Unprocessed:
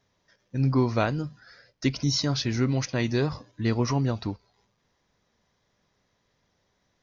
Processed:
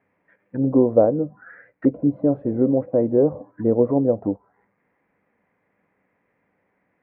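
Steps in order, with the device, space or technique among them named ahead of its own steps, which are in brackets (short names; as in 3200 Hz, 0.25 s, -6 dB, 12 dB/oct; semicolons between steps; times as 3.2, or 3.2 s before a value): envelope filter bass rig (envelope low-pass 550–2400 Hz down, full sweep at -25.5 dBFS; speaker cabinet 72–2000 Hz, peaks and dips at 73 Hz -10 dB, 130 Hz -5 dB, 190 Hz +5 dB, 290 Hz +8 dB, 490 Hz +6 dB, 790 Hz +4 dB)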